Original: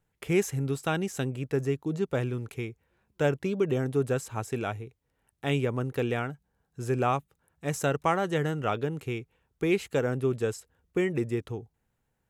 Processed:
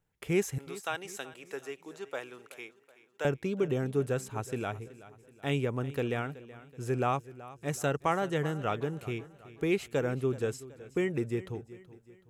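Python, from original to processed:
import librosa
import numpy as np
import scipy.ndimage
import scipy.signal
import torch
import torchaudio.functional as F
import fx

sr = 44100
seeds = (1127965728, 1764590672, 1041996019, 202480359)

y = fx.highpass(x, sr, hz=640.0, slope=12, at=(0.58, 3.25))
y = fx.echo_feedback(y, sr, ms=376, feedback_pct=45, wet_db=-17.5)
y = F.gain(torch.from_numpy(y), -3.0).numpy()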